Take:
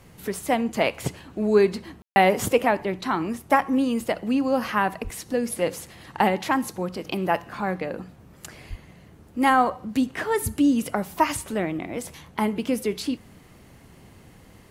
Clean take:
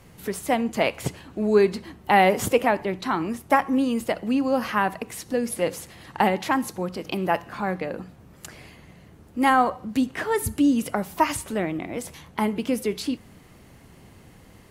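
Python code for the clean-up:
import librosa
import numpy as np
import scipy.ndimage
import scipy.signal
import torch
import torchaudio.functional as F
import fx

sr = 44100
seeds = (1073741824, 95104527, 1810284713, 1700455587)

y = fx.highpass(x, sr, hz=140.0, slope=24, at=(5.03, 5.15), fade=0.02)
y = fx.highpass(y, sr, hz=140.0, slope=24, at=(8.69, 8.81), fade=0.02)
y = fx.fix_ambience(y, sr, seeds[0], print_start_s=13.39, print_end_s=13.89, start_s=2.02, end_s=2.16)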